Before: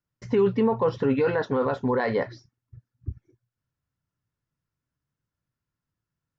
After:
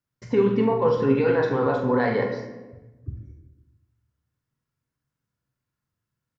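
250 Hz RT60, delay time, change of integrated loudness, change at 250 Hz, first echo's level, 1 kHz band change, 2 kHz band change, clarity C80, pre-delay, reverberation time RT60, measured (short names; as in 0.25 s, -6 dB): 1.3 s, 44 ms, +2.5 dB, +2.5 dB, -7.0 dB, +2.5 dB, +2.5 dB, 8.0 dB, 8 ms, 1.1 s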